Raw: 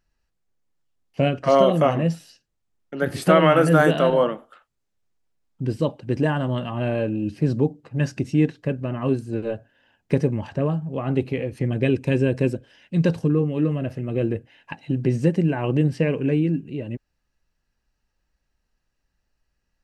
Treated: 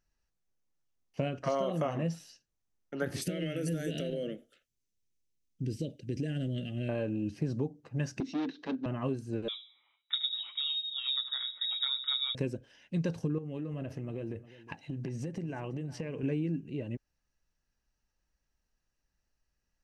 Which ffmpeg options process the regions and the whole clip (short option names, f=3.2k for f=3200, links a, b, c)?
-filter_complex "[0:a]asettb=1/sr,asplit=3[a][b][c];[a]atrim=end=3.214[d];[b]atrim=start=3.21:end=6.89,asetpts=PTS-STARTPTS,afade=t=in:d=0.004:c=qsin,afade=t=out:st=3.676:d=0.004:c=qsin,highshelf=f=7.5k:g=4.5,acompressor=threshold=-20dB:ratio=4:attack=3.2:release=140:knee=1:detection=peak,asuperstop=centerf=1000:order=4:qfactor=0.59[e];[c]atrim=start=6.886[f];[d][e]acrossfade=d=0.004:c1=hsin:c2=qsin[g];[g][f]acrossfade=d=0.004:c1=qsin:c2=hsin,asettb=1/sr,asplit=3[h][i][j];[h]atrim=end=8.204[k];[i]atrim=start=8.2:end=8.86,asetpts=PTS-STARTPTS,afade=t=in:d=0.004:c=qsin,afade=t=out:st=0.656:d=0.004:c=qsin,asoftclip=type=hard:threshold=-24dB,highpass=f=230:w=0.5412,highpass=f=230:w=1.3066,equalizer=f=270:t=q:w=4:g=10,equalizer=f=560:t=q:w=4:g=-5,equalizer=f=3.8k:t=q:w=4:g=9,lowpass=f=5.2k:w=0.5412,lowpass=f=5.2k:w=1.3066,acompressor=mode=upward:threshold=-33dB:ratio=2.5:attack=3.2:release=140:knee=2.83:detection=peak[l];[j]atrim=start=8.856[m];[k][l]acrossfade=d=0.004:c1=hsin:c2=qsin[n];[n][m]acrossfade=d=0.004:c1=qsin:c2=hsin,asettb=1/sr,asplit=3[o][p][q];[o]atrim=end=9.484[r];[p]atrim=start=9.48:end=12.35,asetpts=PTS-STARTPTS,afade=t=in:d=0.004:c=qsin,afade=t=out:st=2.866:d=0.004:c=qsin,flanger=delay=6:depth=2.8:regen=43:speed=1.4:shape=triangular,asplit=2[s][t];[t]adelay=73,lowpass=f=1k:p=1,volume=-12dB,asplit=2[u][v];[v]adelay=73,lowpass=f=1k:p=1,volume=0.4,asplit=2[w][x];[x]adelay=73,lowpass=f=1k:p=1,volume=0.4,asplit=2[y][z];[z]adelay=73,lowpass=f=1k:p=1,volume=0.4[aa];[s][u][w][y][aa]amix=inputs=5:normalize=0,atrim=end_sample=126567,lowpass=f=3.3k:t=q:w=0.5098,lowpass=f=3.3k:t=q:w=0.6013,lowpass=f=3.3k:t=q:w=0.9,lowpass=f=3.3k:t=q:w=2.563,afreqshift=-3900[ab];[q]atrim=start=12.346[ac];[r][ab]acrossfade=d=0.004:c1=hsin:c2=qsin[ad];[ad][ac]acrossfade=d=0.004:c1=qsin:c2=hsin,asettb=1/sr,asplit=3[ae][af][ag];[ae]atrim=end=13.384[ah];[af]atrim=start=13.38:end=16.23,asetpts=PTS-STARTPTS,afade=t=in:d=0.004:c=qsin,afade=t=out:st=2.846:d=0.004:c=qsin,acompressor=threshold=-26dB:ratio=10:attack=3.2:release=140:knee=1:detection=peak,aecho=1:1:357:0.141,atrim=end_sample=125685[ai];[ag]atrim=start=16.226[aj];[ah][ai]acrossfade=d=0.004:c1=hsin:c2=qsin[ak];[ak][aj]acrossfade=d=0.004:c1=qsin:c2=hsin,equalizer=f=6k:t=o:w=0.33:g=7,acompressor=threshold=-21dB:ratio=6,volume=-7dB"